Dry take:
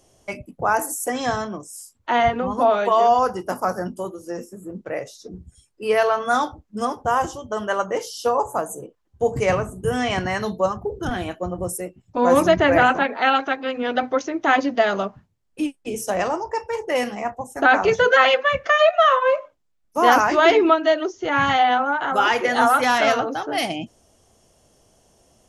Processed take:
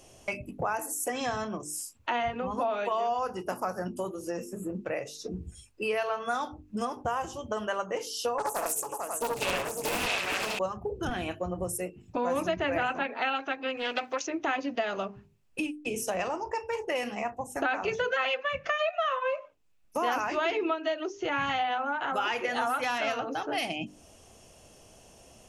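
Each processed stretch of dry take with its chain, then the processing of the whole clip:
0:08.38–0:10.59: RIAA equalisation recording + multi-tap delay 63/69/76/446/543/873 ms −8.5/−3/−9/−9.5/−11.5/−15 dB + highs frequency-modulated by the lows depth 0.99 ms
0:13.77–0:14.27: RIAA equalisation recording + highs frequency-modulated by the lows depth 0.17 ms
whole clip: parametric band 2,600 Hz +9 dB 0.26 octaves; mains-hum notches 50/100/150/200/250/300/350/400/450 Hz; downward compressor 3 to 1, threshold −36 dBFS; level +3.5 dB

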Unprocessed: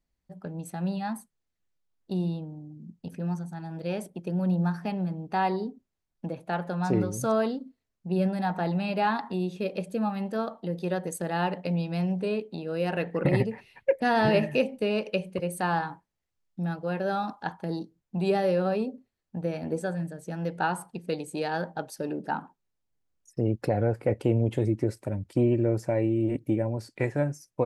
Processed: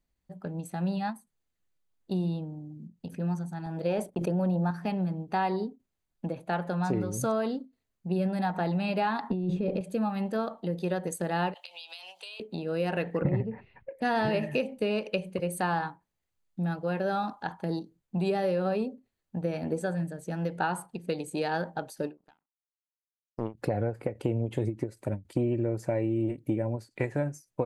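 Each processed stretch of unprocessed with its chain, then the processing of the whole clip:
0:03.66–0:04.71: noise gate −49 dBFS, range −37 dB + dynamic equaliser 660 Hz, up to +7 dB, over −44 dBFS, Q 0.73 + level that may fall only so fast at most 22 dB per second
0:09.30–0:09.81: spectral tilt −3.5 dB per octave + compressor whose output falls as the input rises −28 dBFS
0:11.54–0:12.40: high-pass filter 830 Hz 24 dB per octave + high shelf with overshoot 2,400 Hz +9 dB, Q 3 + downward compressor 12 to 1, threshold −40 dBFS
0:13.22–0:13.91: low-pass filter 1,700 Hz + low-shelf EQ 180 Hz +10 dB
0:22.17–0:23.55: low-shelf EQ 420 Hz −3.5 dB + power curve on the samples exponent 2
whole clip: notch filter 5,400 Hz, Q 9.4; downward compressor, threshold −25 dBFS; every ending faded ahead of time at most 260 dB per second; level +1 dB

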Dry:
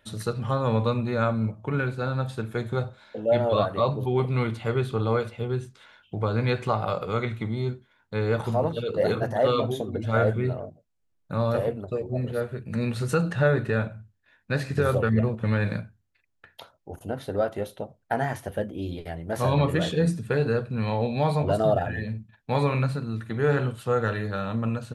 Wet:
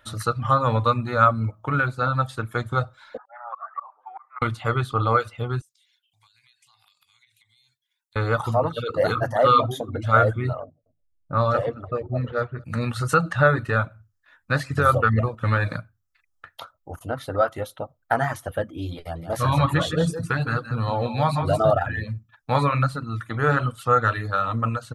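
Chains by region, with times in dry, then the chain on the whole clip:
0:03.17–0:04.42: elliptic band-pass filter 780–1,900 Hz, stop band 80 dB + volume swells 490 ms
0:05.61–0:08.16: inverse Chebyshev high-pass filter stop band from 1,400 Hz + downward compressor 4 to 1, threshold −55 dBFS + drawn EQ curve 110 Hz 0 dB, 340 Hz −12 dB, 920 Hz +9 dB, 3,000 Hz −10 dB, 9,800 Hz −1 dB
0:10.64–0:12.64: low-pass that shuts in the quiet parts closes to 380 Hz, open at −20.5 dBFS + low-pass filter 7,700 Hz 24 dB per octave + single-tap delay 217 ms −19.5 dB
0:18.99–0:21.71: auto-filter notch sine 1.2 Hz 390–2,300 Hz + single-tap delay 162 ms −7.5 dB
whole clip: reverb reduction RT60 0.54 s; thirty-one-band graphic EQ 200 Hz −12 dB, 400 Hz −10 dB, 1,250 Hz +12 dB, 2,500 Hz −3 dB; level +4.5 dB

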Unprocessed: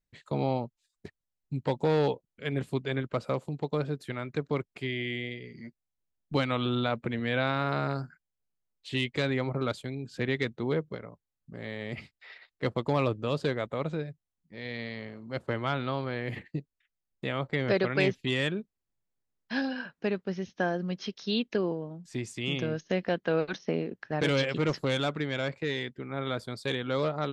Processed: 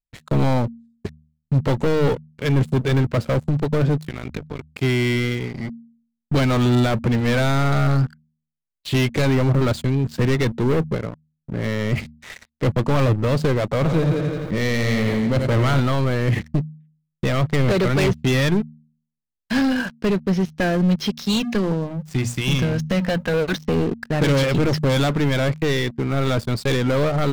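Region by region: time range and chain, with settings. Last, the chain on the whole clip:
0:04.01–0:04.78: dynamic equaliser 2,800 Hz, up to +5 dB, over −54 dBFS, Q 1.6 + downward compressor 16 to 1, threshold −37 dBFS + amplitude modulation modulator 53 Hz, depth 65%
0:13.71–0:15.80: echo machine with several playback heads 85 ms, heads first and second, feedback 41%, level −14 dB + envelope flattener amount 50%
0:21.10–0:23.34: parametric band 380 Hz −7.5 dB 1.1 octaves + mains-hum notches 60/120/180/240 Hz
whole clip: leveller curve on the samples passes 5; low-shelf EQ 200 Hz +10.5 dB; hum removal 77.25 Hz, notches 3; level −5 dB

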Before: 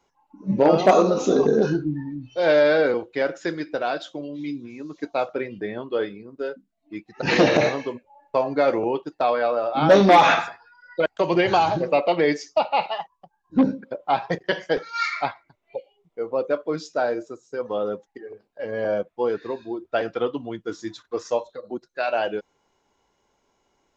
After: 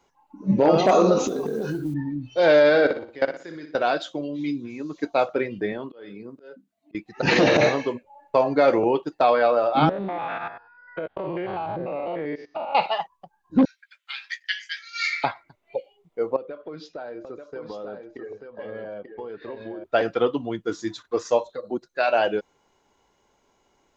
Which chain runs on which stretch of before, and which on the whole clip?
0:01.27–0:01.94: downward compressor 10 to 1, threshold −26 dBFS + noise that follows the level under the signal 30 dB
0:02.69–0:03.75: output level in coarse steps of 20 dB + flutter between parallel walls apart 10.2 metres, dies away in 0.42 s
0:05.72–0:06.95: high-pass filter 120 Hz + downward compressor 10 to 1, threshold −29 dBFS + volume swells 322 ms
0:09.89–0:12.75: spectrum averaged block by block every 100 ms + Gaussian smoothing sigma 3 samples + downward compressor 16 to 1, threshold −28 dBFS
0:13.65–0:15.24: Butterworth high-pass 1,800 Hz + double-tracking delay 16 ms −11 dB
0:16.36–0:19.84: low-pass filter 4,100 Hz 24 dB per octave + downward compressor 10 to 1, threshold −35 dBFS + single-tap delay 887 ms −6 dB
whole clip: notch filter 5,400 Hz, Q 22; boost into a limiter +10 dB; level −7 dB

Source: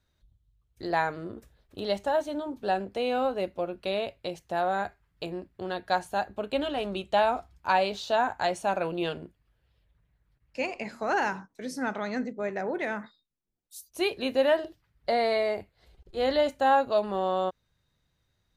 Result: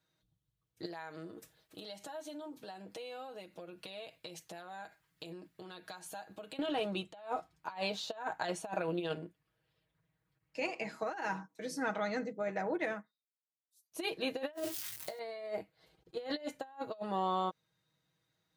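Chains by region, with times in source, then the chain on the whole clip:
0:00.85–0:06.59: high-shelf EQ 2,500 Hz +10.5 dB + downward compressor 8 to 1, threshold −40 dBFS
0:12.75–0:13.92: low-shelf EQ 190 Hz +6.5 dB + expander for the loud parts 2.5 to 1, over −44 dBFS
0:14.53–0:15.19: spike at every zero crossing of −28.5 dBFS + parametric band 110 Hz +14.5 dB 0.37 octaves + double-tracking delay 19 ms −3 dB
whole clip: high-pass filter 140 Hz 12 dB per octave; comb filter 6.3 ms, depth 66%; compressor whose output falls as the input rises −28 dBFS, ratio −0.5; level −8 dB

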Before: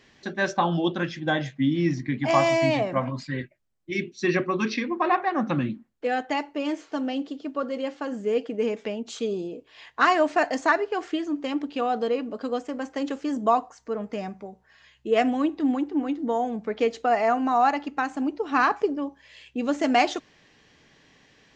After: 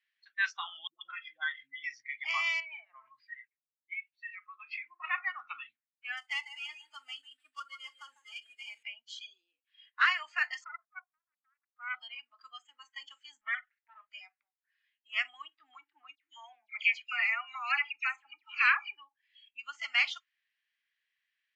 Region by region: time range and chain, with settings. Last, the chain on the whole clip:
0:00.87–0:01.84: low-pass filter 2,500 Hz + notch filter 830 Hz, Q 14 + all-pass dispersion highs, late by 140 ms, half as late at 420 Hz
0:02.60–0:05.04: low-pass filter 2,500 Hz + downward compressor 5 to 1, threshold −29 dBFS
0:06.17–0:08.83: gap after every zero crossing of 0.1 ms + repeating echo 149 ms, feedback 39%, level −9.5 dB
0:10.64–0:11.95: formant resonators in series a + high-shelf EQ 2,300 Hz −10.5 dB + highs frequency-modulated by the lows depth 0.96 ms
0:13.41–0:14.01: lower of the sound and its delayed copy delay 0.48 ms + low-pass filter 3,000 Hz 24 dB per octave + downward compressor 1.5 to 1, threshold −27 dBFS
0:16.15–0:18.97: high-pass filter 300 Hz 6 dB per octave + parametric band 2,400 Hz +12 dB 0.41 octaves + all-pass dispersion lows, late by 88 ms, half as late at 2,300 Hz
whole clip: inverse Chebyshev high-pass filter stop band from 490 Hz, stop band 60 dB; noise reduction from a noise print of the clip's start 23 dB; low-pass filter 2,800 Hz 12 dB per octave; level +3 dB

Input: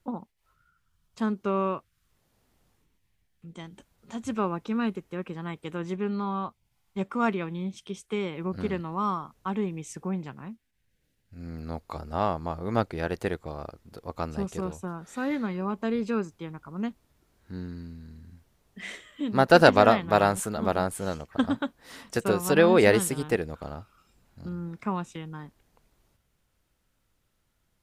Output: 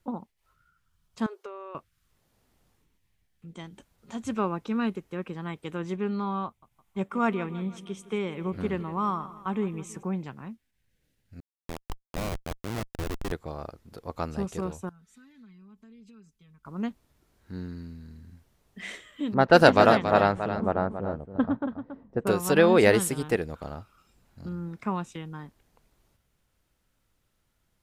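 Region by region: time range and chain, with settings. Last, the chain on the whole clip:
0:01.26–0:01.75: linear-phase brick-wall high-pass 350 Hz + downward compressor 16 to 1, threshold −36 dBFS
0:06.46–0:10.03: parametric band 4,700 Hz −6.5 dB 0.68 octaves + repeating echo 163 ms, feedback 53%, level −16.5 dB
0:11.40–0:13.32: dynamic equaliser 310 Hz, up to +3 dB, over −47 dBFS, Q 7 + comparator with hysteresis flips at −27.5 dBFS
0:14.89–0:16.65: guitar amp tone stack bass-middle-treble 6-0-2 + downward compressor 10 to 1, threshold −53 dBFS + comb filter 4.6 ms, depth 84%
0:19.34–0:22.27: low-pass that shuts in the quiet parts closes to 370 Hz, open at −12.5 dBFS + single-tap delay 278 ms −10 dB
whole clip: no processing

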